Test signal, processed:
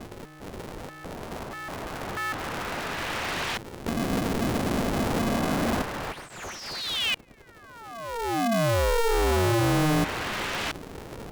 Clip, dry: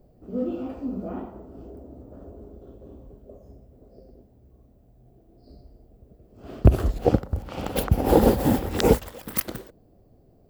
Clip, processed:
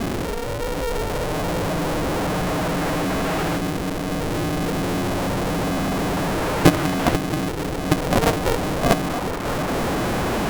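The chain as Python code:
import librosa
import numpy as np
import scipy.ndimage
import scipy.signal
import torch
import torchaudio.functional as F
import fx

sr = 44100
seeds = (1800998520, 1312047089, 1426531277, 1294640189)

y = fx.delta_mod(x, sr, bps=64000, step_db=-16.0)
y = fx.filter_lfo_lowpass(y, sr, shape='saw_up', hz=0.28, low_hz=200.0, high_hz=2800.0, q=0.79)
y = y * np.sign(np.sin(2.0 * np.pi * 230.0 * np.arange(len(y)) / sr))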